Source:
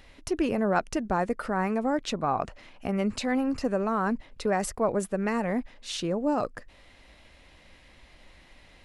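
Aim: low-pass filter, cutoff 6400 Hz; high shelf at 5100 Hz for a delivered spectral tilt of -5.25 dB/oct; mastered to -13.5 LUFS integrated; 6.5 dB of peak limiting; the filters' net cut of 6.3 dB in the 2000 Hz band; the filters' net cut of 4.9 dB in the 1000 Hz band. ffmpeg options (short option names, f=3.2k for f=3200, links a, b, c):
-af "lowpass=6.4k,equalizer=f=1k:t=o:g=-5.5,equalizer=f=2k:t=o:g=-7,highshelf=f=5.1k:g=6,volume=18.5dB,alimiter=limit=-3dB:level=0:latency=1"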